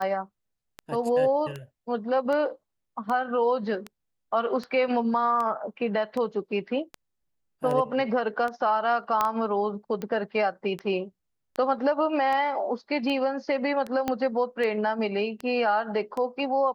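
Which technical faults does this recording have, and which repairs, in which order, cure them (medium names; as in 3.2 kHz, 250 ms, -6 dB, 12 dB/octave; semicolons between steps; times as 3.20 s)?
tick 78 rpm -20 dBFS
9.21 s: pop -10 dBFS
14.08 s: pop -13 dBFS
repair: de-click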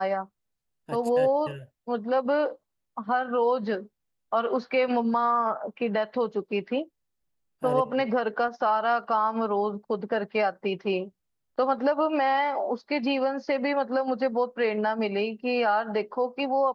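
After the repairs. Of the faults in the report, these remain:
14.08 s: pop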